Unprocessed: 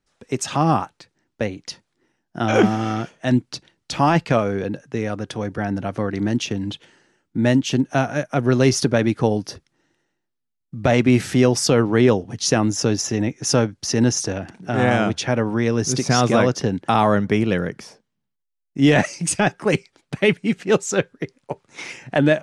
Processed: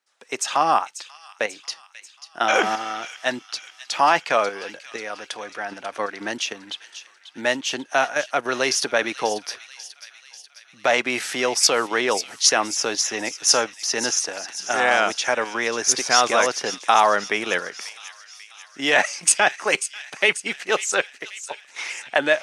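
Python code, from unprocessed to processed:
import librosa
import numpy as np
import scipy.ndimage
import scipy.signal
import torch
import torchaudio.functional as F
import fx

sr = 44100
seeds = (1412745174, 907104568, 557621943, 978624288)

p1 = fx.level_steps(x, sr, step_db=22)
p2 = x + (p1 * librosa.db_to_amplitude(3.0))
p3 = scipy.signal.sosfilt(scipy.signal.butter(2, 790.0, 'highpass', fs=sr, output='sos'), p2)
y = fx.echo_wet_highpass(p3, sr, ms=540, feedback_pct=58, hz=2700.0, wet_db=-11.0)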